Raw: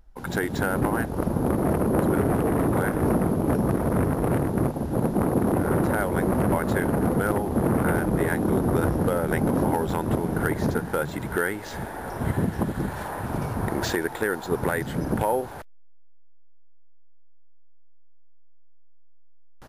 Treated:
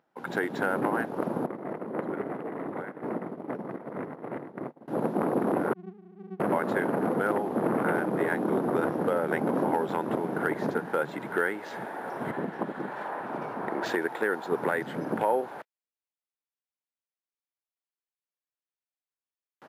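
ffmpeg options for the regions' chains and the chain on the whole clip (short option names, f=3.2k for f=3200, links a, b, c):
-filter_complex "[0:a]asettb=1/sr,asplit=3[a][b][c];[a]atrim=end=1.464[d];[b]atrim=start=1.46:end=4.88,asetpts=PTS-STARTPTS,afade=t=in:d=0.004:c=qsin,afade=t=out:st=3.416:d=0.004:c=qsin,agate=range=-33dB:threshold=-16dB:ratio=3:release=100:detection=peak,lowpass=f=4k:p=1,equalizer=f=2k:t=o:w=0.23:g=7[e];[c]atrim=start=4.876[f];[d][e]acrossfade=d=0.004:c1=hsin:c2=qsin[g];[g][f]acrossfade=d=0.004:c1=qsin:c2=hsin,asettb=1/sr,asplit=3[h][i][j];[h]atrim=end=5.734[k];[i]atrim=start=5.73:end=6.4,asetpts=PTS-STARTPTS,afade=t=in:d=0.004:c=qsin,afade=t=out:st=0.666:d=0.004:c=qsin,asuperpass=centerf=190:order=12:qfactor=5.3,aeval=exprs='max(val(0),0)':c=same[l];[j]atrim=start=6.396[m];[k][l]acrossfade=d=0.004:c1=hsin:c2=qsin[n];[n][m]acrossfade=d=0.004:c1=qsin:c2=hsin,asettb=1/sr,asplit=3[o][p][q];[o]atrim=end=12.314[r];[p]atrim=start=12.31:end=13.86,asetpts=PTS-STARTPTS,afade=t=in:d=0.004:c=qsin,afade=t=out:st=1.546:d=0.004:c=qsin,highpass=f=230:p=1,aemphasis=mode=reproduction:type=cd[s];[q]atrim=start=13.856[t];[r][s]acrossfade=d=0.004:c1=hsin:c2=qsin[u];[u][t]acrossfade=d=0.004:c1=qsin:c2=hsin,highpass=f=150:w=0.5412,highpass=f=150:w=1.3066,bass=f=250:g=-8,treble=f=4k:g=-13,volume=-1dB"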